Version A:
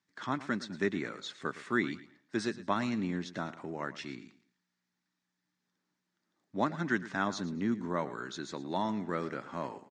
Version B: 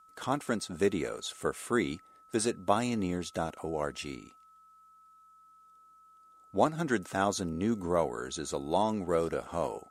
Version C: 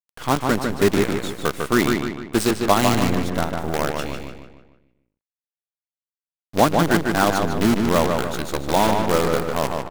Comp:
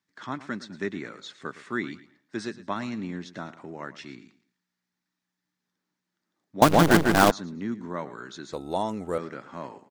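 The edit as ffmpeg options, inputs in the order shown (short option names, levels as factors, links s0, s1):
-filter_complex "[0:a]asplit=3[s0][s1][s2];[s0]atrim=end=6.622[s3];[2:a]atrim=start=6.618:end=7.312[s4];[s1]atrim=start=7.308:end=8.532[s5];[1:a]atrim=start=8.528:end=9.182[s6];[s2]atrim=start=9.178[s7];[s3][s4]acrossfade=d=0.004:c1=hsin:c2=hsin[s8];[s8][s5]acrossfade=d=0.004:c1=hsin:c2=hsin[s9];[s9][s6]acrossfade=d=0.004:c1=hsin:c2=hsin[s10];[s10][s7]acrossfade=d=0.004:c1=hsin:c2=hsin"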